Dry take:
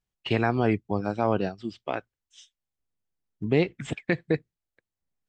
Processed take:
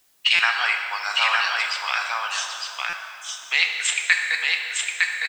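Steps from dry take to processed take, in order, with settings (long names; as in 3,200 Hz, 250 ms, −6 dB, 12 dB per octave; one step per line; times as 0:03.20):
high-pass filter 1,100 Hz 24 dB per octave
spectral tilt +4.5 dB per octave
in parallel at 0 dB: downward compressor 4 to 1, threshold −42 dBFS, peak gain reduction 17.5 dB
on the sum: bit-depth reduction 12 bits, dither triangular
on a send: single-tap delay 908 ms −3 dB
on the sum: dense smooth reverb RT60 2.8 s, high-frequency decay 0.65×, DRR 2.5 dB
buffer that repeats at 0:00.35/0:02.89, samples 256, times 6
level +7 dB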